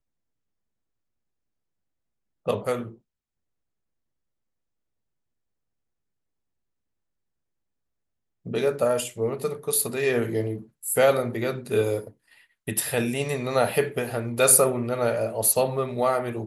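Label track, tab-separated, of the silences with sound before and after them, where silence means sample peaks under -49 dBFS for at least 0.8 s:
2.960000	8.450000	silence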